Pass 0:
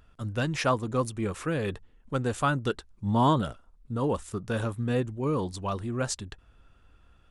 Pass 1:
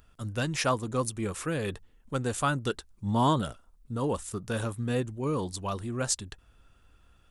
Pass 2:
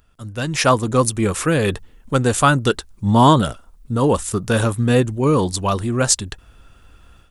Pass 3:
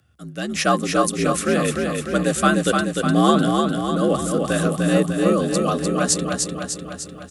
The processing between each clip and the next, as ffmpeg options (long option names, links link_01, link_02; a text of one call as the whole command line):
ffmpeg -i in.wav -af "highshelf=frequency=5500:gain=11,volume=-2dB" out.wav
ffmpeg -i in.wav -af "dynaudnorm=framelen=360:gausssize=3:maxgain=12.5dB,volume=1.5dB" out.wav
ffmpeg -i in.wav -af "aecho=1:1:300|600|900|1200|1500|1800|2100|2400:0.631|0.372|0.22|0.13|0.0765|0.0451|0.0266|0.0157,afreqshift=58,asuperstop=centerf=940:order=20:qfactor=4.7,volume=-3.5dB" out.wav